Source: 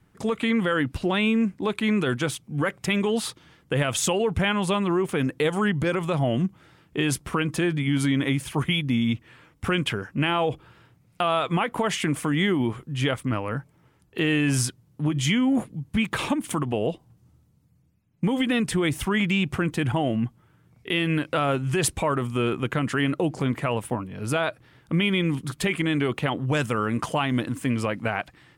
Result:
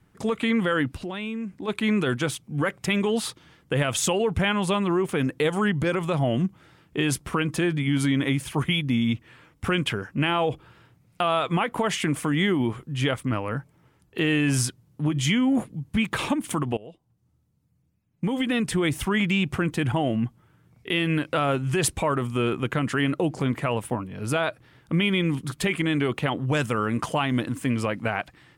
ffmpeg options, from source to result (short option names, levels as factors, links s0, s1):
-filter_complex "[0:a]asplit=3[s0][s1][s2];[s0]afade=t=out:st=0.91:d=0.02[s3];[s1]acompressor=threshold=0.0224:ratio=2.5:attack=3.2:release=140:knee=1:detection=peak,afade=t=in:st=0.91:d=0.02,afade=t=out:st=1.67:d=0.02[s4];[s2]afade=t=in:st=1.67:d=0.02[s5];[s3][s4][s5]amix=inputs=3:normalize=0,asplit=2[s6][s7];[s6]atrim=end=16.77,asetpts=PTS-STARTPTS,afade=t=out:st=16.766:d=0.004:c=hsin:silence=0.0891251[s8];[s7]atrim=start=16.77,asetpts=PTS-STARTPTS,afade=t=in:d=2.06:silence=0.0891251[s9];[s8][s9]concat=n=2:v=0:a=1"